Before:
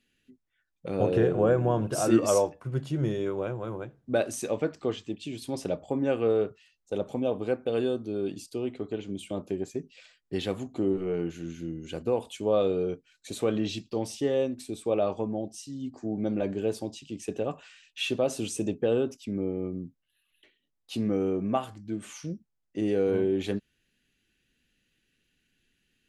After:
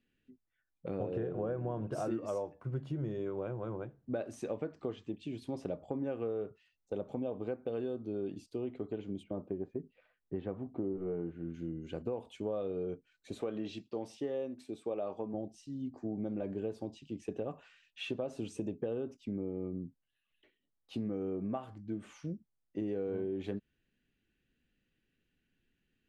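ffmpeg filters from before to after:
-filter_complex "[0:a]asplit=3[s0][s1][s2];[s0]afade=t=out:st=9.22:d=0.02[s3];[s1]lowpass=1500,afade=t=in:st=9.22:d=0.02,afade=t=out:st=11.53:d=0.02[s4];[s2]afade=t=in:st=11.53:d=0.02[s5];[s3][s4][s5]amix=inputs=3:normalize=0,asettb=1/sr,asplit=3[s6][s7][s8];[s6]atrim=end=13.414[s9];[s7]atrim=start=13.41:end=15.34,asetpts=PTS-STARTPTS,afade=t=in:d=0.004:c=qsin,afade=t=out:st=1.926:d=0.004:c=qsin,highpass=f=290:p=1[s10];[s8]atrim=start=15.336[s11];[s9][s10]acrossfade=d=0.004:c1=hsin:c2=qsin[s12];[s12][s11]acrossfade=d=0.004:c1=qsin:c2=hsin,lowpass=f=1300:p=1,acompressor=threshold=0.0316:ratio=6,volume=0.708"

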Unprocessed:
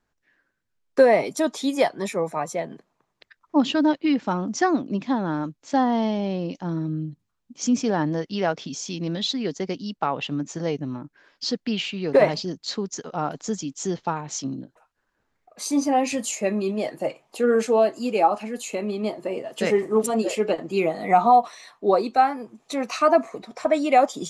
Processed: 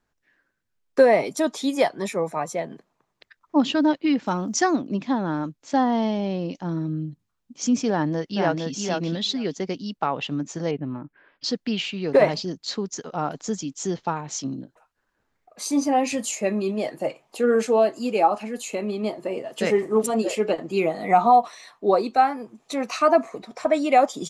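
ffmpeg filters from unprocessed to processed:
-filter_complex "[0:a]asettb=1/sr,asplit=3[s0][s1][s2];[s0]atrim=end=4.264[s3];[s1]atrim=start=4.26:end=4.76,asetpts=PTS-STARTPTS,afade=t=in:d=0.004:c=qsin,afade=t=out:st=0.496:d=0.004:c=qsin,aemphasis=mode=production:type=50fm[s4];[s2]atrim=start=4.756[s5];[s3][s4]acrossfade=d=0.004:c1=hsin:c2=qsin[s6];[s6][s5]acrossfade=d=0.004:c1=qsin:c2=hsin,asplit=2[s7][s8];[s8]afade=t=in:st=7.9:d=0.01,afade=t=out:st=8.7:d=0.01,aecho=0:1:460|920:0.668344|0.0668344[s9];[s7][s9]amix=inputs=2:normalize=0,asettb=1/sr,asplit=3[s10][s11][s12];[s10]atrim=end=10.714[s13];[s11]atrim=start=10.71:end=11.44,asetpts=PTS-STARTPTS,afade=t=in:d=0.004:c=qsin,afade=t=out:st=0.726:d=0.004:c=qsin,lowpass=f=2900:w=0.5412,lowpass=f=2900:w=1.3066[s14];[s12]atrim=start=11.436[s15];[s13][s14]acrossfade=d=0.004:c1=hsin:c2=qsin[s16];[s16][s15]acrossfade=d=0.004:c1=qsin:c2=hsin"

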